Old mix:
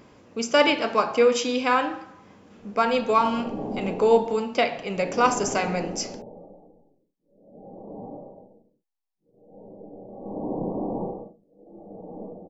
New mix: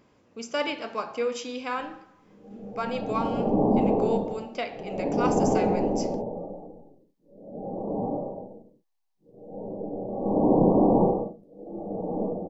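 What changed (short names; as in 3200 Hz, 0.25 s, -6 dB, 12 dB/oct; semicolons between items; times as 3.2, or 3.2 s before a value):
speech -9.5 dB; background +9.5 dB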